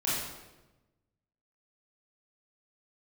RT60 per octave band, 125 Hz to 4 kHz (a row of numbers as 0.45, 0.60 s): 1.6, 1.3, 1.2, 1.0, 0.90, 0.80 s